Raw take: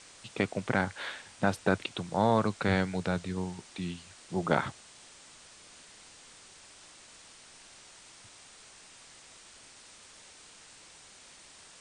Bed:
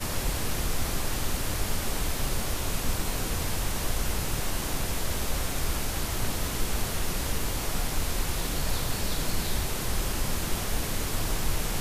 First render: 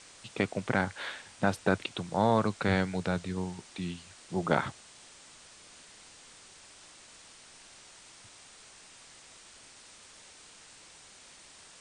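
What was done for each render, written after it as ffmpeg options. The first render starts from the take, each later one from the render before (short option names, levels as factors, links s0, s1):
-af anull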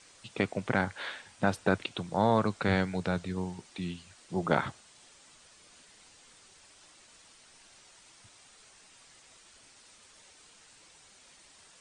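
-af "afftdn=nr=6:nf=-54"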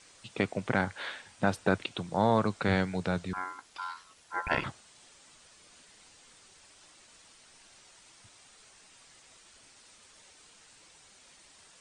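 -filter_complex "[0:a]asettb=1/sr,asplit=3[s0][s1][s2];[s0]atrim=end=3.334[s3];[s1]atrim=start=3.33:end=4.64,asetpts=PTS-STARTPTS,afade=t=in:d=0.004:c=qsin,afade=t=out:st=1.306:d=0.004:c=qsin,aeval=exprs='val(0)*sin(2*PI*1200*n/s)':c=same[s4];[s2]atrim=start=4.636[s5];[s3][s4]acrossfade=d=0.004:c1=hsin:c2=qsin[s6];[s6][s5]acrossfade=d=0.004:c1=qsin:c2=hsin"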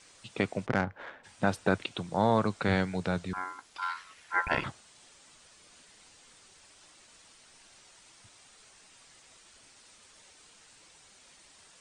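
-filter_complex "[0:a]asplit=3[s0][s1][s2];[s0]afade=t=out:st=0.65:d=0.02[s3];[s1]adynamicsmooth=sensitivity=1.5:basefreq=1100,afade=t=in:st=0.65:d=0.02,afade=t=out:st=1.23:d=0.02[s4];[s2]afade=t=in:st=1.23:d=0.02[s5];[s3][s4][s5]amix=inputs=3:normalize=0,asettb=1/sr,asplit=3[s6][s7][s8];[s6]atrim=end=3.824[s9];[s7]atrim=start=3.82:end=4.45,asetpts=PTS-STARTPTS,afade=t=in:d=0.004:c=qsin,afade=t=out:st=0.626:d=0.004:c=qsin,equalizer=f=2000:t=o:w=1.3:g=10.5[s10];[s8]atrim=start=4.446[s11];[s9][s10]acrossfade=d=0.004:c1=hsin:c2=qsin[s12];[s12][s11]acrossfade=d=0.004:c1=qsin:c2=hsin"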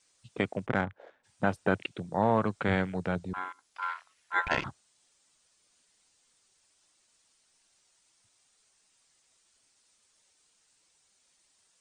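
-af "afwtdn=0.01,bass=f=250:g=-1,treble=f=4000:g=7"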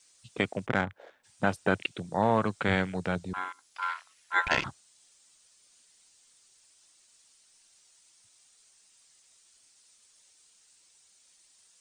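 -af "highshelf=f=2500:g=8.5"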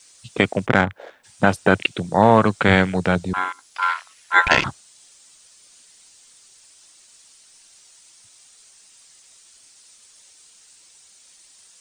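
-af "volume=3.76,alimiter=limit=0.891:level=0:latency=1"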